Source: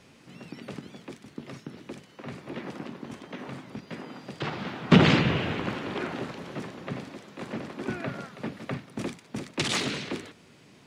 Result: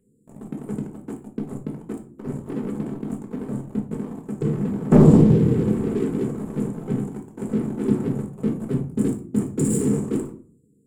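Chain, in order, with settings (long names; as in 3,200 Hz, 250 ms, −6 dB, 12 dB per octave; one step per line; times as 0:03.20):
brick-wall band-stop 520–6,900 Hz
flat-topped bell 2,300 Hz +10.5 dB 1.3 octaves
leveller curve on the samples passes 3
rectangular room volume 320 cubic metres, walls furnished, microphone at 1.5 metres
level −3 dB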